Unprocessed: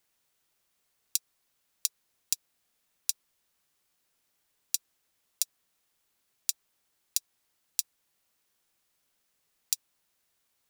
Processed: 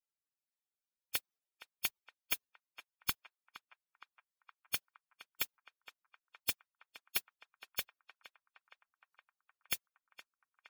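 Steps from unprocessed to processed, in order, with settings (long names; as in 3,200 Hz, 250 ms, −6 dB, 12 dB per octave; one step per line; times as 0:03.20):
dynamic equaliser 8,600 Hz, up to +7 dB, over −50 dBFS, Q 1.6
phase shifter 0.61 Hz, delay 3.6 ms, feedback 23%
gate on every frequency bin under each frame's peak −25 dB weak
on a send: feedback echo with a band-pass in the loop 466 ms, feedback 75%, band-pass 1,200 Hz, level −12 dB
on the sum: level +16 dB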